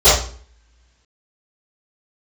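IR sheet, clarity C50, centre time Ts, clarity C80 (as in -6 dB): 1.0 dB, 48 ms, 8.0 dB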